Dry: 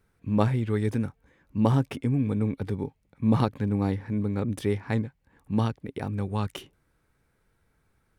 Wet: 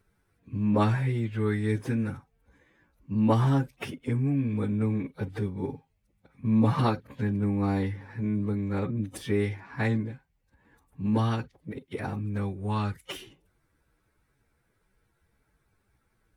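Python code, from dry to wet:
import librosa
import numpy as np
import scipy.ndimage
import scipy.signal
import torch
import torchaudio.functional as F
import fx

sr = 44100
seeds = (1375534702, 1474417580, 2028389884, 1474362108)

y = fx.stretch_vocoder_free(x, sr, factor=2.0)
y = fx.dynamic_eq(y, sr, hz=1700.0, q=1.2, threshold_db=-48.0, ratio=4.0, max_db=4)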